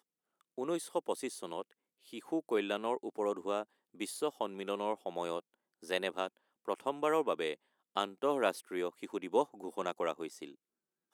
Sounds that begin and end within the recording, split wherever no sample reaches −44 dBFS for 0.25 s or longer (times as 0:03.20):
0:00.58–0:01.62
0:02.13–0:03.63
0:04.00–0:05.40
0:05.84–0:06.27
0:06.68–0:07.54
0:07.96–0:10.50